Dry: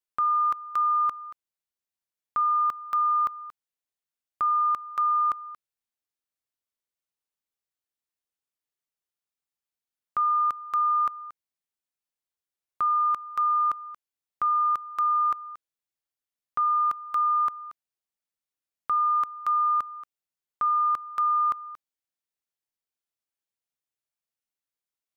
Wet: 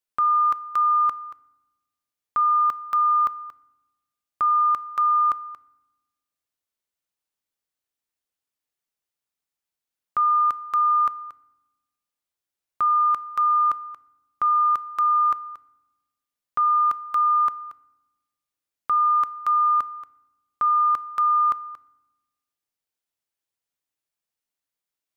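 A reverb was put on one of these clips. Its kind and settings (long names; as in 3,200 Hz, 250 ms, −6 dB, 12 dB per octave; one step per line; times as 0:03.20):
feedback delay network reverb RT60 1 s, low-frequency decay 1.55×, high-frequency decay 0.65×, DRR 16.5 dB
level +3 dB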